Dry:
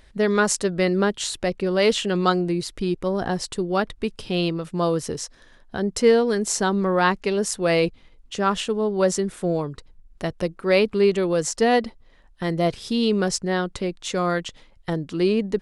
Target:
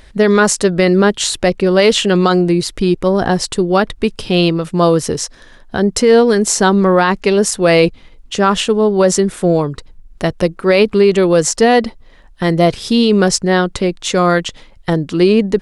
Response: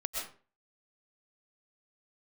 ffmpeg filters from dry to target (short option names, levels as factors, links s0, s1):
-af "alimiter=level_in=3.76:limit=0.891:release=50:level=0:latency=1,volume=0.891"